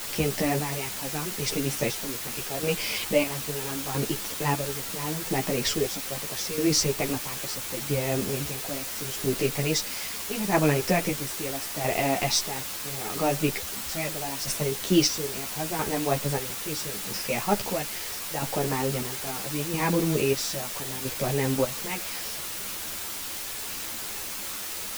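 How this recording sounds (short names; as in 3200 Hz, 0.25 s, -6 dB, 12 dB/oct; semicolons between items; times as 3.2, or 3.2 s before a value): chopped level 0.76 Hz, depth 65%, duty 45%; a quantiser's noise floor 6-bit, dither triangular; a shimmering, thickened sound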